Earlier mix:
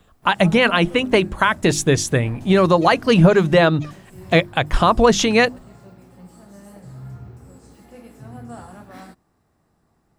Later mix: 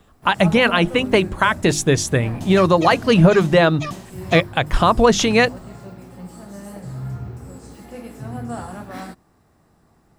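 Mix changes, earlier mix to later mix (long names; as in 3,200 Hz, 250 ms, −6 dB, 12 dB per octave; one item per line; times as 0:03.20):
first sound +7.0 dB
second sound +12.0 dB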